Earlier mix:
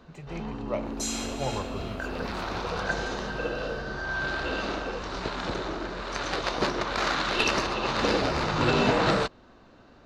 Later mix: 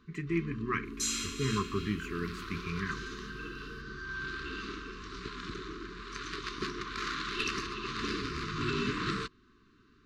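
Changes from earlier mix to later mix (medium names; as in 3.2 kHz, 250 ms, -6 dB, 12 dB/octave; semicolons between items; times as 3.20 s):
speech: remove static phaser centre 670 Hz, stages 4; first sound -8.0 dB; master: add brick-wall FIR band-stop 450–1000 Hz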